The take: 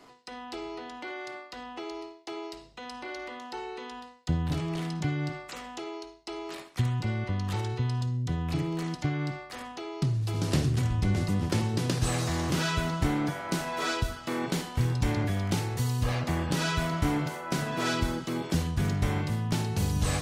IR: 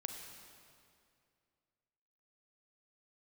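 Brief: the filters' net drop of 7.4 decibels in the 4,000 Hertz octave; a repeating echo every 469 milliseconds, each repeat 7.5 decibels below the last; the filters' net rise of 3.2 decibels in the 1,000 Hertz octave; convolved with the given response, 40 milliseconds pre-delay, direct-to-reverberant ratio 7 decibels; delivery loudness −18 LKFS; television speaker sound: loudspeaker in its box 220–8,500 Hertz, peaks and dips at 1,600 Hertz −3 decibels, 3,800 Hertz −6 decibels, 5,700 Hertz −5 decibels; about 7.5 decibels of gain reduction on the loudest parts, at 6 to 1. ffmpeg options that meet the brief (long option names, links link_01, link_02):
-filter_complex "[0:a]equalizer=frequency=1000:width_type=o:gain=4.5,equalizer=frequency=4000:width_type=o:gain=-6,acompressor=threshold=-30dB:ratio=6,aecho=1:1:469|938|1407|1876|2345:0.422|0.177|0.0744|0.0312|0.0131,asplit=2[link_01][link_02];[1:a]atrim=start_sample=2205,adelay=40[link_03];[link_02][link_03]afir=irnorm=-1:irlink=0,volume=-5.5dB[link_04];[link_01][link_04]amix=inputs=2:normalize=0,highpass=frequency=220:width=0.5412,highpass=frequency=220:width=1.3066,equalizer=frequency=1600:width_type=q:width=4:gain=-3,equalizer=frequency=3800:width_type=q:width=4:gain=-6,equalizer=frequency=5700:width_type=q:width=4:gain=-5,lowpass=frequency=8500:width=0.5412,lowpass=frequency=8500:width=1.3066,volume=19.5dB"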